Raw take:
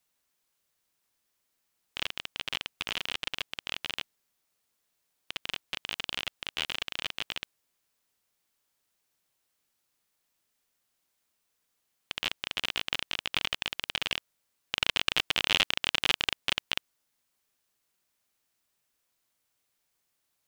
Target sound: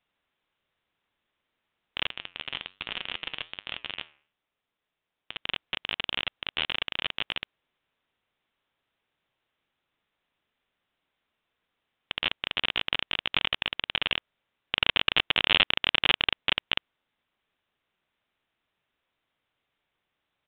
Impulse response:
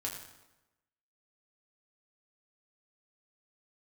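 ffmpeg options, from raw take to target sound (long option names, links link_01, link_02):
-filter_complex "[0:a]asettb=1/sr,asplit=3[link_01][link_02][link_03];[link_01]atrim=end=2.094[link_04];[link_02]atrim=start=2.09:end=5.37,asetpts=PTS-STARTPTS,afade=type=in:duration=0.004:curve=qsin,afade=type=out:start_time=3.276:duration=0.004:curve=qsin,flanger=delay=7.5:depth=6.8:regen=-83:speed=1.2:shape=triangular[link_05];[link_03]atrim=start=5.366[link_06];[link_04][link_05]acrossfade=duration=0.004:curve1=hsin:curve2=qsin[link_07];[link_07][link_06]acrossfade=duration=0.004:curve1=qsin:curve2=hsin,aresample=8000,aresample=44100,volume=4dB"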